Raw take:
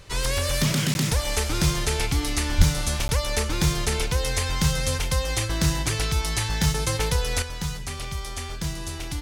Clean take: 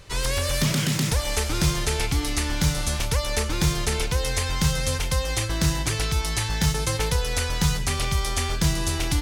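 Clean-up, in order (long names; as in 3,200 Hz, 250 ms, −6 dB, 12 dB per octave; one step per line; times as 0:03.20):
0:02.57–0:02.69: high-pass filter 140 Hz 24 dB per octave
repair the gap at 0:00.94/0:03.08, 11 ms
0:07.42: level correction +7.5 dB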